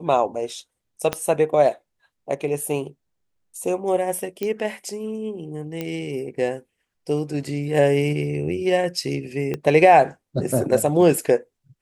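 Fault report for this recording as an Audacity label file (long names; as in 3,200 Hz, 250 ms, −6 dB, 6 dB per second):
1.130000	1.130000	click −8 dBFS
4.430000	4.430000	click −13 dBFS
5.810000	5.810000	click −14 dBFS
9.540000	9.540000	click −14 dBFS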